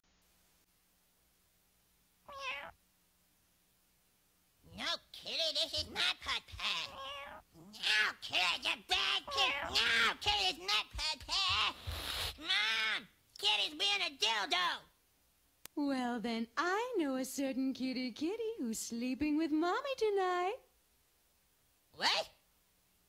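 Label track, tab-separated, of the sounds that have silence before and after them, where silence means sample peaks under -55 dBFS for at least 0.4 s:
2.280000	2.720000	sound
4.650000	14.850000	sound
15.650000	20.610000	sound
21.940000	22.310000	sound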